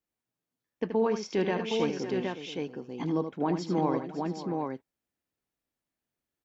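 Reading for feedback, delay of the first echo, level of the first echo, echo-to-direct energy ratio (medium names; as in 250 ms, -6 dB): no regular repeats, 77 ms, -8.0 dB, -2.0 dB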